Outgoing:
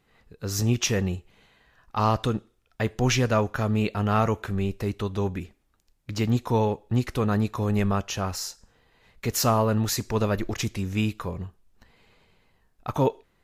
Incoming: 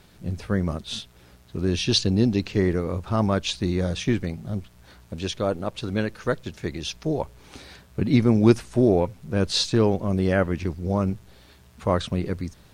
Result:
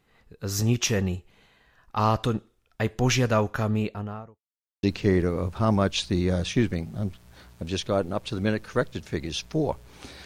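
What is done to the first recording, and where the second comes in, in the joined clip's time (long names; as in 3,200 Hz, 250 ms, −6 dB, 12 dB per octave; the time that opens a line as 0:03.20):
outgoing
0:03.55–0:04.42: fade out and dull
0:04.42–0:04.83: silence
0:04.83: continue with incoming from 0:02.34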